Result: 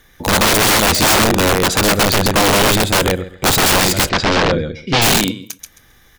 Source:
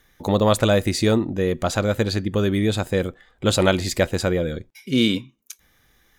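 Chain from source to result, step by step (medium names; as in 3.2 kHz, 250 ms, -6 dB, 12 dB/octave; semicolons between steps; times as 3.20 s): feedback delay 133 ms, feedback 18%, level -5 dB; integer overflow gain 16.5 dB; 4.09–5.02 s: low-pass 5.3 kHz 24 dB/octave; on a send at -21 dB: reverberation, pre-delay 32 ms; on the sum: trim +9 dB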